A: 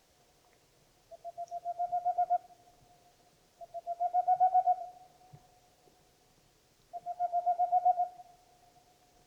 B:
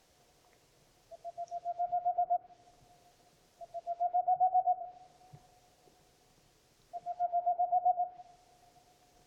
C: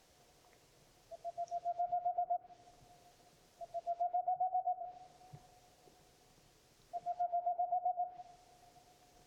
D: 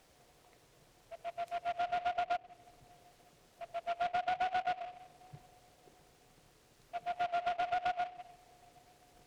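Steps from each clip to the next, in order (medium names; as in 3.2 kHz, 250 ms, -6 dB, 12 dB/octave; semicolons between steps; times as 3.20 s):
low-pass that closes with the level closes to 830 Hz, closed at -26 dBFS
compression 6:1, threshold -33 dBFS, peak gain reduction 9 dB
self-modulated delay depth 0.13 ms; delay time shaken by noise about 1.6 kHz, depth 0.05 ms; trim +2 dB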